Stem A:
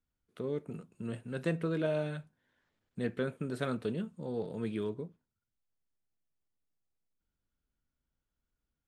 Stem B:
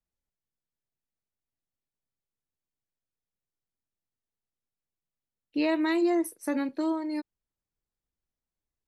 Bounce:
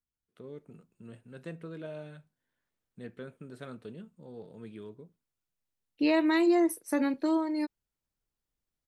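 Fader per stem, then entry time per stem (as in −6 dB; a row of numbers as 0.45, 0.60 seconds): −9.5, +1.0 decibels; 0.00, 0.45 seconds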